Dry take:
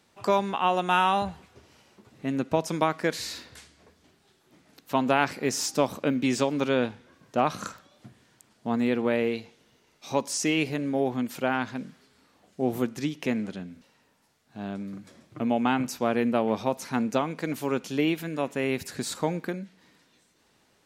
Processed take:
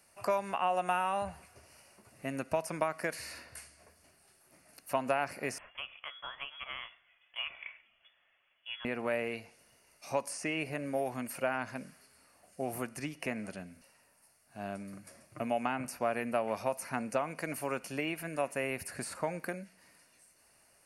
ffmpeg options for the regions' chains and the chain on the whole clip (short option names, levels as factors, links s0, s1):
-filter_complex "[0:a]asettb=1/sr,asplit=3[s0][s1][s2];[s0]atrim=end=5.584[s3];[s1]atrim=start=5.58:end=8.85,asetpts=PTS-STARTPTS,afade=t=in:d=0.004:c=qsin,afade=t=out:st=3.266:d=0.004:c=qsin,highpass=150,flanger=delay=2.8:depth=2.2:regen=81:speed=1.8:shape=triangular,lowpass=f=3100:t=q:w=0.5098,lowpass=f=3100:t=q:w=0.6013,lowpass=f=3100:t=q:w=0.9,lowpass=f=3100:t=q:w=2.563,afreqshift=-3600[s4];[s2]atrim=start=8.846[s5];[s3][s4]acrossfade=d=0.004:c1=hsin:c2=qsin[s6];[s6][s5]acrossfade=d=0.004:c1=qsin:c2=hsin,equalizer=f=260:t=o:w=2.9:g=-9.5,acrossover=split=890|2900[s7][s8][s9];[s7]acompressor=threshold=0.02:ratio=4[s10];[s8]acompressor=threshold=0.0178:ratio=4[s11];[s9]acompressor=threshold=0.00282:ratio=4[s12];[s10][s11][s12]amix=inputs=3:normalize=0,superequalizer=8b=2:13b=0.251:16b=3.98"